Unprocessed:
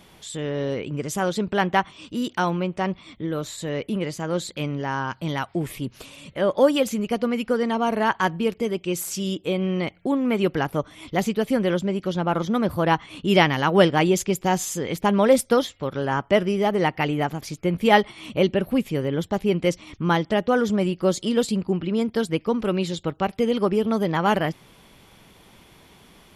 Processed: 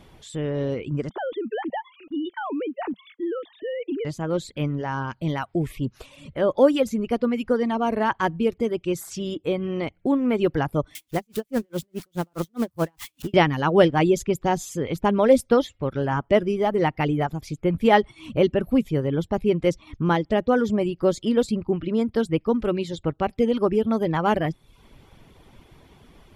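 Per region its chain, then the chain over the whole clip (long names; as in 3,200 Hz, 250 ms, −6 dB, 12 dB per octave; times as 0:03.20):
0:01.09–0:04.05: three sine waves on the formant tracks + downward compressor 5 to 1, threshold −26 dBFS + one half of a high-frequency compander decoder only
0:10.95–0:13.34: spike at every zero crossing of −18 dBFS + tremolo with a sine in dB 4.8 Hz, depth 38 dB
whole clip: spectral tilt −2 dB per octave; reverb reduction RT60 0.58 s; parametric band 190 Hz −8 dB 0.21 octaves; level −1 dB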